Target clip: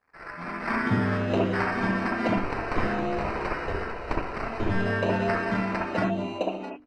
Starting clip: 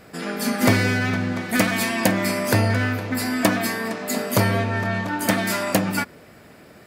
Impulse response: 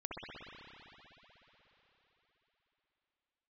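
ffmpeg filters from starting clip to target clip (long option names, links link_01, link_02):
-filter_complex "[0:a]aeval=exprs='sgn(val(0))*max(abs(val(0))-0.0075,0)':channel_layout=same,aemphasis=mode=reproduction:type=cd,acrossover=split=280|890[link_01][link_02][link_03];[link_01]adelay=230[link_04];[link_02]adelay=660[link_05];[link_04][link_05][link_03]amix=inputs=3:normalize=0,asettb=1/sr,asplit=3[link_06][link_07][link_08];[link_06]atrim=end=2.374[link_09];[link_07]atrim=start=2.37:end=4.69,asetpts=PTS-STARTPTS,afade=type=in:duration=0.004:curve=qsin,afade=type=out:start_time=2.316:duration=0.004:curve=qsin,aeval=exprs='abs(val(0))':channel_layout=same[link_10];[link_08]atrim=start=4.686[link_11];[link_09][link_10]acrossfade=duration=0.004:curve1=hsin:curve2=qsin[link_12];[link_12][link_11]acrossfade=duration=0.004:curve1=qsin:curve2=hsin,equalizer=frequency=270:width=4.5:gain=-2.5,acrusher=samples=13:mix=1:aa=0.000001,lowpass=2900,bandreject=frequency=50:width_type=h:width=6,bandreject=frequency=100:width_type=h:width=6,bandreject=frequency=150:width_type=h:width=6,bandreject=frequency=200:width_type=h:width=6,bandreject=frequency=250:width_type=h:width=6,bandreject=frequency=300:width_type=h:width=6[link_13];[1:a]atrim=start_sample=2205,afade=type=out:start_time=0.13:duration=0.01,atrim=end_sample=6174[link_14];[link_13][link_14]afir=irnorm=-1:irlink=0,volume=2dB" -ar 48000 -c:a libopus -b:a 32k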